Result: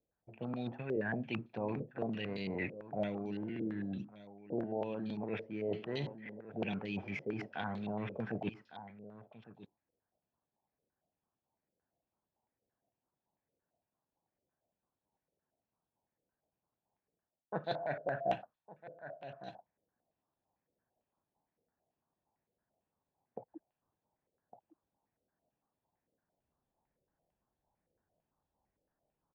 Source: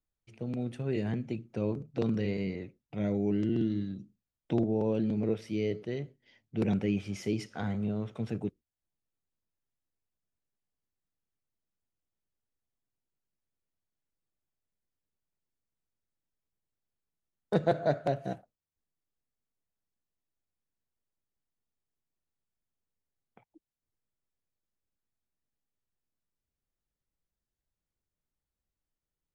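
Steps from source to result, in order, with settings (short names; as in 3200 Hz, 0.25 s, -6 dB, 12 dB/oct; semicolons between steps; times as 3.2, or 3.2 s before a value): reverse; compressor 10:1, threshold -41 dBFS, peak gain reduction 20.5 dB; reverse; low-pass opened by the level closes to 690 Hz, open at -40 dBFS; HPF 390 Hz 6 dB/oct; comb 1.2 ms, depth 35%; on a send: echo 1.157 s -16 dB; on the sum: vocal rider within 4 dB 0.5 s; stepped low-pass 8.9 Hz 500–3900 Hz; gain +10.5 dB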